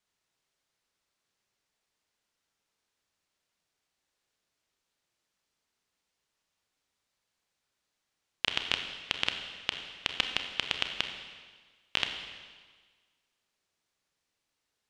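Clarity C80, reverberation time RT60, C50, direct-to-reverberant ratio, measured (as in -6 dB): 7.5 dB, 1.5 s, 6.5 dB, 5.0 dB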